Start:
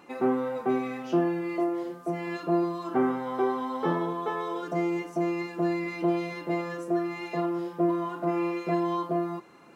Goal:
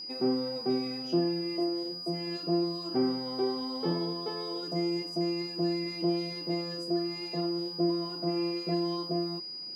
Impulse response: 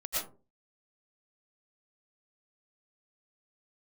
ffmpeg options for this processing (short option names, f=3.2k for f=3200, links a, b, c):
-af "acontrast=55,equalizer=f=1.3k:t=o:w=2.1:g=-13,aeval=exprs='val(0)+0.0251*sin(2*PI*4900*n/s)':c=same,volume=-6dB"